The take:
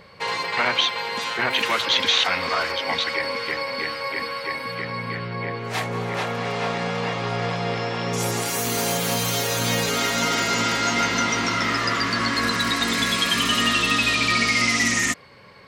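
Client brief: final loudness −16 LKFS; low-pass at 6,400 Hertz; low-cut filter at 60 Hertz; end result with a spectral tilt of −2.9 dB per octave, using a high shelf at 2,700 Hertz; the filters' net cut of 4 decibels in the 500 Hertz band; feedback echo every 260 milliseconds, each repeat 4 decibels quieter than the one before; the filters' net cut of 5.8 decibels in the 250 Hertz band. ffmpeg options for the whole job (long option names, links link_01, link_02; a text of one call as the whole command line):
ffmpeg -i in.wav -af "highpass=60,lowpass=6400,equalizer=frequency=250:width_type=o:gain=-6.5,equalizer=frequency=500:width_type=o:gain=-3,highshelf=frequency=2700:gain=-7,aecho=1:1:260|520|780|1040|1300|1560|1820|2080|2340:0.631|0.398|0.25|0.158|0.0994|0.0626|0.0394|0.0249|0.0157,volume=7.5dB" out.wav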